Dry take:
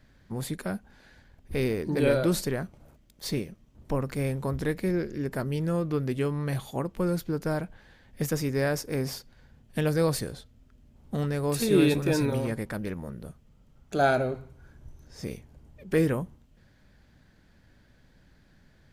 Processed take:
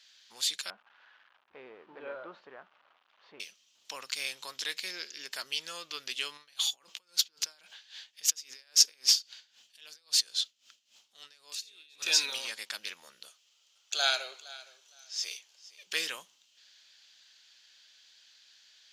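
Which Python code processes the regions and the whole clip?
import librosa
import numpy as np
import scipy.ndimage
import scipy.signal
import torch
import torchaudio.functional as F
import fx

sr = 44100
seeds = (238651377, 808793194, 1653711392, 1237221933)

y = fx.chain(x, sr, fx.crossing_spikes(level_db=-25.5),
    fx.lowpass(hz=1200.0, slope=24), at=(0.7, 3.4))
y = fx.chain(y, sr, fx.over_compress(threshold_db=-37.0, ratio=-1.0),
    fx.tremolo_db(hz=3.7, depth_db=18), at=(6.37, 12.02))
y = fx.chain(y, sr, fx.highpass(hz=350.0, slope=24),
    fx.echo_feedback(ms=464, feedback_pct=19, wet_db=-19.0), at=(13.29, 15.87))
y = scipy.signal.sosfilt(scipy.signal.butter(2, 1500.0, 'highpass', fs=sr, output='sos'), y)
y = fx.band_shelf(y, sr, hz=4400.0, db=15.0, octaves=1.7)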